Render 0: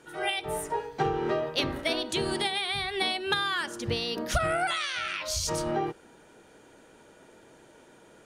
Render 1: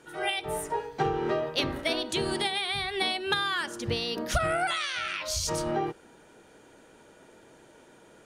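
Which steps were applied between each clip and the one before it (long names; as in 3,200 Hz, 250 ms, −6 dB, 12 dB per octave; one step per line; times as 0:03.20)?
no processing that can be heard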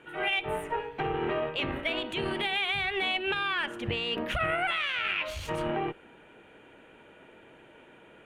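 brickwall limiter −22.5 dBFS, peak gain reduction 8.5 dB
harmonic generator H 2 −13 dB, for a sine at −22.5 dBFS
high shelf with overshoot 3,800 Hz −11.5 dB, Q 3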